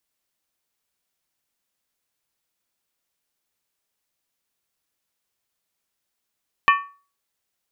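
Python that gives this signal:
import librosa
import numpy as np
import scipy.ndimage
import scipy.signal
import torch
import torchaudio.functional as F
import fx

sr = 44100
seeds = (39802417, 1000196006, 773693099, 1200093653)

y = fx.strike_skin(sr, length_s=0.63, level_db=-10.0, hz=1130.0, decay_s=0.37, tilt_db=4, modes=5)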